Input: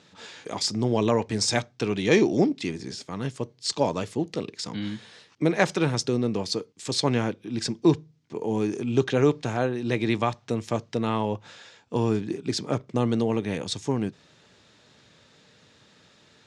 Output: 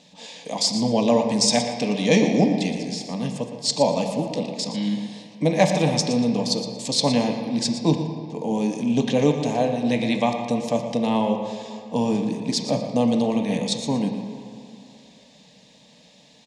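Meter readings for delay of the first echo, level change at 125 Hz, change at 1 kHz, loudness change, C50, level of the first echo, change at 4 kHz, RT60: 0.117 s, +1.5 dB, +4.5 dB, +4.0 dB, 5.5 dB, -11.5 dB, +5.5 dB, 2.5 s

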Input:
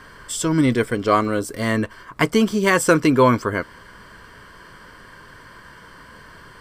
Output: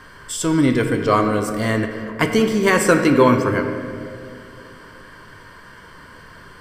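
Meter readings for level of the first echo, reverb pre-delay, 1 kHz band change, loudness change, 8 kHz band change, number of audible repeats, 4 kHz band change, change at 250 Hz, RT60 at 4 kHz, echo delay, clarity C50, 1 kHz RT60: none, 6 ms, +0.5 dB, +1.5 dB, +0.5 dB, none, +0.5 dB, +1.5 dB, 1.3 s, none, 6.5 dB, 2.0 s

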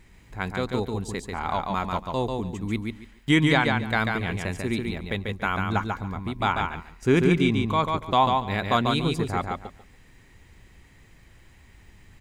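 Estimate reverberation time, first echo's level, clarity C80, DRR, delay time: none, -4.0 dB, none, none, 0.142 s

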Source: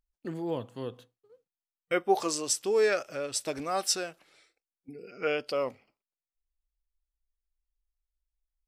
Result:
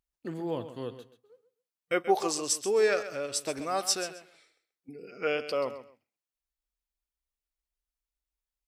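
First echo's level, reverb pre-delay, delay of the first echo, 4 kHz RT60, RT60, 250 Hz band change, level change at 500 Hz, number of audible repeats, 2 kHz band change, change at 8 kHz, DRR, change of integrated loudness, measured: -12.5 dB, none, 0.132 s, none, none, 0.0 dB, 0.0 dB, 2, 0.0 dB, 0.0 dB, none, 0.0 dB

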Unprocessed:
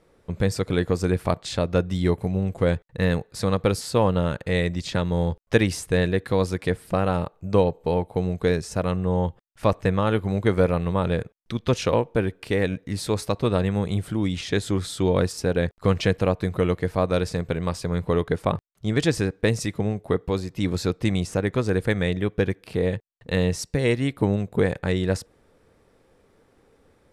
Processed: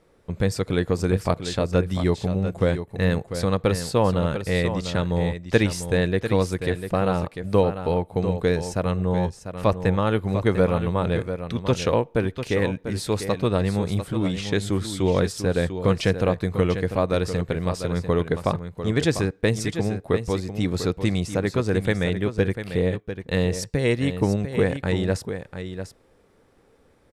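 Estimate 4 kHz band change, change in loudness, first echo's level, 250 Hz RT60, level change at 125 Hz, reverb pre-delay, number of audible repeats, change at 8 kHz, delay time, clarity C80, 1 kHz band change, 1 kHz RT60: +0.5 dB, +0.5 dB, -9.5 dB, none, +0.5 dB, none, 1, +0.5 dB, 0.696 s, none, +0.5 dB, none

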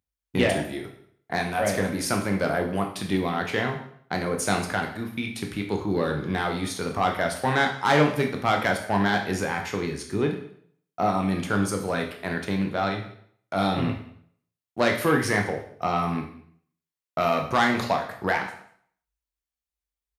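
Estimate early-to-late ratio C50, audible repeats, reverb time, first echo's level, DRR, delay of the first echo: 8.0 dB, 1, 0.60 s, -23.0 dB, 2.5 dB, 0.194 s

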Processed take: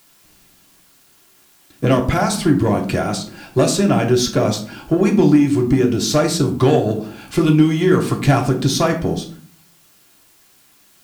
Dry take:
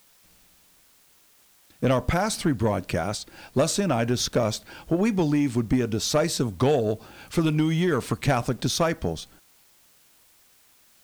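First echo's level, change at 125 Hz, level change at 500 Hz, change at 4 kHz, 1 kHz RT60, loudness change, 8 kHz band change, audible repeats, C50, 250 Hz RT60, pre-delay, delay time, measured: none, +8.0 dB, +7.5 dB, +5.5 dB, 0.45 s, +8.0 dB, +5.5 dB, none, 10.0 dB, 0.70 s, 3 ms, none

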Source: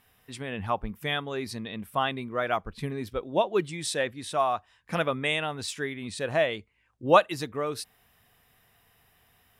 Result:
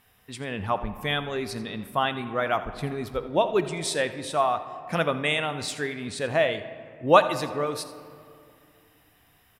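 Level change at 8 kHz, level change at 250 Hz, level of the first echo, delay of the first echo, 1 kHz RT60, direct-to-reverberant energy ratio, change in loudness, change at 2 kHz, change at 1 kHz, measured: +2.0 dB, +2.5 dB, -16.0 dB, 83 ms, 2.3 s, 10.0 dB, +2.5 dB, +2.5 dB, +2.5 dB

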